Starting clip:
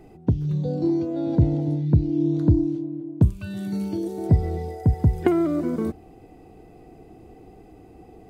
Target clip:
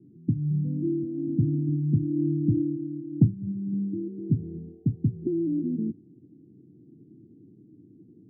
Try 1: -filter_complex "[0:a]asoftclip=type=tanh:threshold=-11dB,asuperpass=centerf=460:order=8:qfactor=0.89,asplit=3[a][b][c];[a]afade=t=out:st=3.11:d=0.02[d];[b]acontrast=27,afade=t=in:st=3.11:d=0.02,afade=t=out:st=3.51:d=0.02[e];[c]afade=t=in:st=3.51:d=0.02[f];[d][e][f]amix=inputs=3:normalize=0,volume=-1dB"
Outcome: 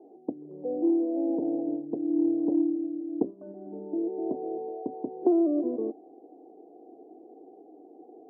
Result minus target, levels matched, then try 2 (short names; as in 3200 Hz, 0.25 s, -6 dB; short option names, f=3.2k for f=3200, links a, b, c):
500 Hz band +8.0 dB
-filter_complex "[0:a]asoftclip=type=tanh:threshold=-11dB,asuperpass=centerf=190:order=8:qfactor=0.89,asplit=3[a][b][c];[a]afade=t=out:st=3.11:d=0.02[d];[b]acontrast=27,afade=t=in:st=3.11:d=0.02,afade=t=out:st=3.51:d=0.02[e];[c]afade=t=in:st=3.51:d=0.02[f];[d][e][f]amix=inputs=3:normalize=0,volume=-1dB"